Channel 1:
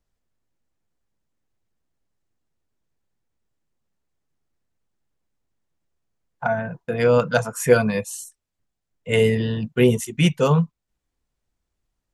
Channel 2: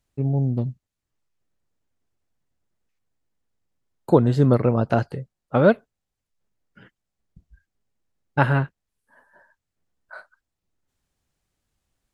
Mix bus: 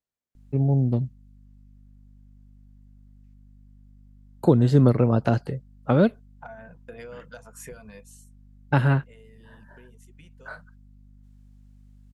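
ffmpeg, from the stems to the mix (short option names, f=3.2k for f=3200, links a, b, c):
-filter_complex "[0:a]highpass=f=230:p=1,alimiter=limit=-12dB:level=0:latency=1:release=419,acompressor=threshold=-27dB:ratio=10,volume=-11dB,afade=t=out:st=7.65:d=0.68:silence=0.237137[a];[1:a]aeval=exprs='val(0)+0.00282*(sin(2*PI*50*n/s)+sin(2*PI*2*50*n/s)/2+sin(2*PI*3*50*n/s)/3+sin(2*PI*4*50*n/s)/4+sin(2*PI*5*50*n/s)/5)':c=same,acrossover=split=360|3000[b][c][d];[c]acompressor=threshold=-24dB:ratio=6[e];[b][e][d]amix=inputs=3:normalize=0,adelay=350,volume=1dB[f];[a][f]amix=inputs=2:normalize=0"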